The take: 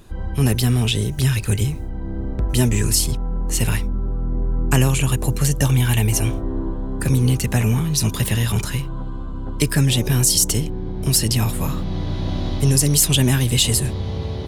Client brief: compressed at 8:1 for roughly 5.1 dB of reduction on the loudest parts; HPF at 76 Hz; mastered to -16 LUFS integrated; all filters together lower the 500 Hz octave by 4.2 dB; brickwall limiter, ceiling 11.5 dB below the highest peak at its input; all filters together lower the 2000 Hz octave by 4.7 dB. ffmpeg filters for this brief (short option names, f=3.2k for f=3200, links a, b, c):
-af "highpass=76,equalizer=f=500:t=o:g=-5.5,equalizer=f=2k:t=o:g=-6,acompressor=threshold=-18dB:ratio=8,volume=11dB,alimiter=limit=-6.5dB:level=0:latency=1"